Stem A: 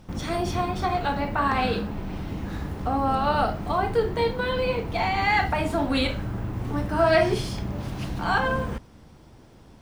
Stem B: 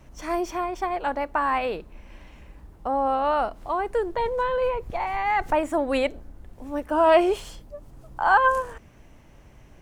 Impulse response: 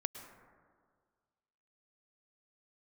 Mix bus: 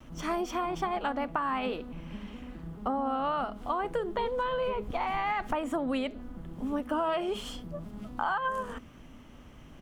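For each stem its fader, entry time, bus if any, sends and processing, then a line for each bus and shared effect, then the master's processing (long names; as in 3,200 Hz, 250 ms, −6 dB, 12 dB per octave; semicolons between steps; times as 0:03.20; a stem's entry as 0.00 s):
−12.0 dB, 0.00 s, no send, vocoder with an arpeggio as carrier major triad, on E3, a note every 212 ms
−2.0 dB, 3.7 ms, polarity flipped, no send, thirty-one-band graphic EQ 250 Hz +12 dB, 1,250 Hz +8 dB, 3,150 Hz +9 dB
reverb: not used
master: downward compressor 10 to 1, threshold −27 dBFS, peak gain reduction 15 dB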